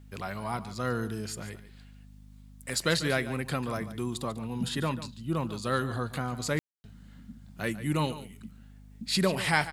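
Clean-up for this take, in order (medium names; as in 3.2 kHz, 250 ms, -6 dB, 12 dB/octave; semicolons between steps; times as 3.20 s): de-hum 50.8 Hz, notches 5; room tone fill 6.59–6.84 s; inverse comb 144 ms -14 dB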